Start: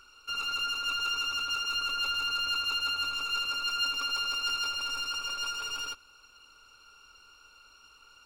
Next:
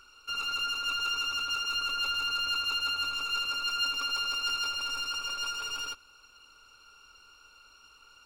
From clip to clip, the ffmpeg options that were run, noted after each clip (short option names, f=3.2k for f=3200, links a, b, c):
-af anull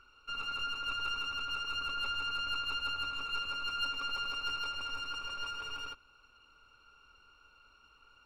-af "aeval=exprs='0.119*(cos(1*acos(clip(val(0)/0.119,-1,1)))-cos(1*PI/2))+0.0133*(cos(3*acos(clip(val(0)/0.119,-1,1)))-cos(3*PI/2))+0.00473*(cos(6*acos(clip(val(0)/0.119,-1,1)))-cos(6*PI/2))':c=same,bass=f=250:g=4,treble=f=4k:g=-15"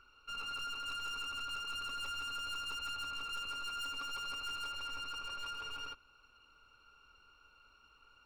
-af "asoftclip=type=hard:threshold=-35.5dB,volume=-2dB"